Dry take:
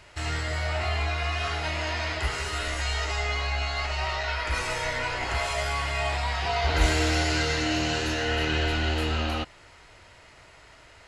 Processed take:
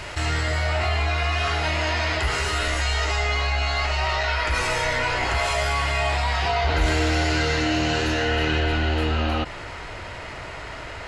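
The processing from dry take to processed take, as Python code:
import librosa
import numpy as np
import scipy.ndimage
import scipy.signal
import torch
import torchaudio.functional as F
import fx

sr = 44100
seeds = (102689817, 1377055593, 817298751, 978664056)

y = fx.high_shelf(x, sr, hz=4500.0, db=fx.steps((0.0, -2.0), (6.5, -7.0), (8.59, -11.5)))
y = fx.env_flatten(y, sr, amount_pct=50)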